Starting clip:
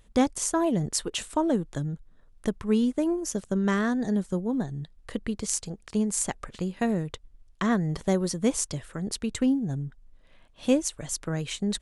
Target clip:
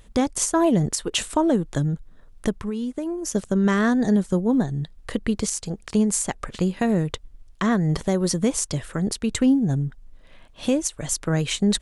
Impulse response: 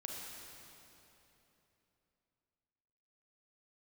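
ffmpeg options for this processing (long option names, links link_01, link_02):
-filter_complex "[0:a]alimiter=limit=-18.5dB:level=0:latency=1:release=204,asplit=3[link_01][link_02][link_03];[link_01]afade=type=out:start_time=2.59:duration=0.02[link_04];[link_02]acompressor=threshold=-34dB:ratio=5,afade=type=in:start_time=2.59:duration=0.02,afade=type=out:start_time=3.34:duration=0.02[link_05];[link_03]afade=type=in:start_time=3.34:duration=0.02[link_06];[link_04][link_05][link_06]amix=inputs=3:normalize=0,volume=8dB"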